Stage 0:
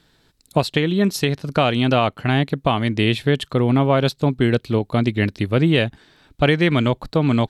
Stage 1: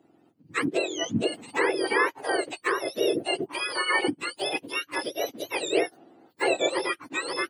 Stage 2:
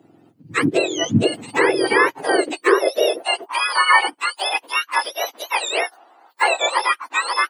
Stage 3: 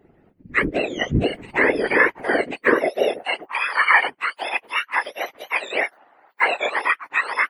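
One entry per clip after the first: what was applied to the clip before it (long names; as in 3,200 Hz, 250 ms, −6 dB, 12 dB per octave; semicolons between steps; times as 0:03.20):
frequency axis turned over on the octave scale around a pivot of 1,100 Hz; three-way crossover with the lows and the highs turned down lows −19 dB, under 190 Hz, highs −15 dB, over 2,800 Hz; level −1.5 dB
high-pass filter sweep 110 Hz → 960 Hz, 0:02.03–0:03.25; level +7.5 dB
octave-band graphic EQ 125/500/2,000/4,000/8,000 Hz +10/+6/+12/−5/−10 dB; random phases in short frames; level −8 dB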